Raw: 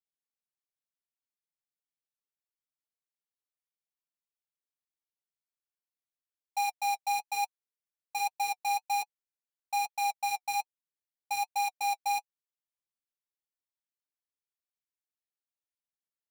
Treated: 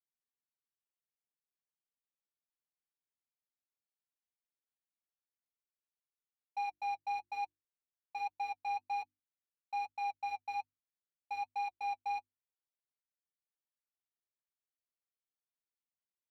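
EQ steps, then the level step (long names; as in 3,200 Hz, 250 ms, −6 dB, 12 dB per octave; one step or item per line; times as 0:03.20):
high-frequency loss of the air 330 metres
mains-hum notches 50/100/150/200/250/300/350 Hz
−5.0 dB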